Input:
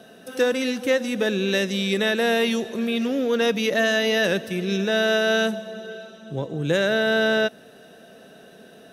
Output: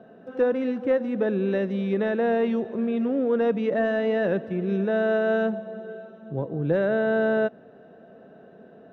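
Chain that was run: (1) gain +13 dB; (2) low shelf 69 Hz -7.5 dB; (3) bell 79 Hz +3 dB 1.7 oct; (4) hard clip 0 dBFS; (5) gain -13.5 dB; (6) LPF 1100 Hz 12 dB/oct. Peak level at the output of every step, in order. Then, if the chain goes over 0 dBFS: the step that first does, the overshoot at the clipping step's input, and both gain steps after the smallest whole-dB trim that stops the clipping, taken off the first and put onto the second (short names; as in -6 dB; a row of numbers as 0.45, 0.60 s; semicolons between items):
+3.5, +3.5, +3.5, 0.0, -13.5, -13.5 dBFS; step 1, 3.5 dB; step 1 +9 dB, step 5 -9.5 dB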